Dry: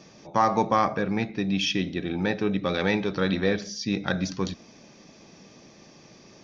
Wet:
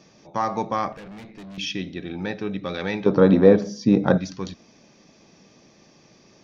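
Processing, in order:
0:00.92–0:01.58: tube saturation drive 35 dB, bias 0.55
0:03.06–0:04.18: graphic EQ with 10 bands 125 Hz +10 dB, 250 Hz +11 dB, 500 Hz +11 dB, 1,000 Hz +11 dB, 2,000 Hz −3 dB, 4,000 Hz −4 dB
level −3 dB

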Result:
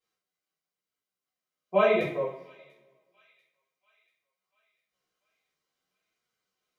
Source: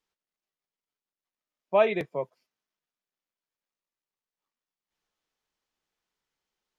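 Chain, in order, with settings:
notch comb filter 860 Hz
on a send: delay with a high-pass on its return 691 ms, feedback 53%, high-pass 2,600 Hz, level −22 dB
on the sum: coupled-rooms reverb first 0.5 s, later 1.6 s, from −19 dB, DRR −8.5 dB
flanger 0.48 Hz, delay 8.1 ms, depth 8.8 ms, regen +36%
level −2 dB

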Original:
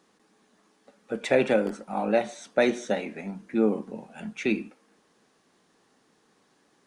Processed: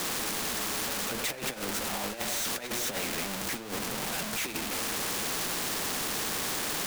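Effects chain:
converter with a step at zero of −24 dBFS
compressor whose output falls as the input rises −24 dBFS, ratio −0.5
flanger 0.73 Hz, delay 5.4 ms, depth 9.9 ms, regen −45%
every bin compressed towards the loudest bin 2 to 1

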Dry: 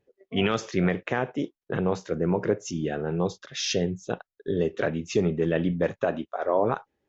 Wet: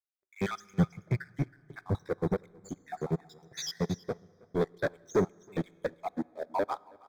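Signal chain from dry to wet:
time-frequency cells dropped at random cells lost 71%
0:00.51–0:01.95: octave-band graphic EQ 125/250/500/1,000/2,000/4,000 Hz +12/−4/−11/−6/+7/−6 dB
in parallel at +2.5 dB: brickwall limiter −20 dBFS, peak gain reduction 8 dB
on the sum: leveller curve on the samples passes 3
Butterworth band-reject 2,800 Hz, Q 3.1
single-tap delay 322 ms −14 dB
dense smooth reverb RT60 3 s, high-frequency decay 0.55×, DRR 14 dB
expander for the loud parts 2.5 to 1, over −22 dBFS
level −9 dB

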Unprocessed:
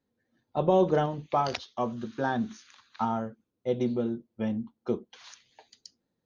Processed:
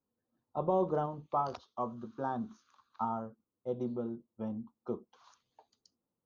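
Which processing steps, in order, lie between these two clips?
high shelf with overshoot 1,500 Hz −8 dB, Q 3
level −8.5 dB

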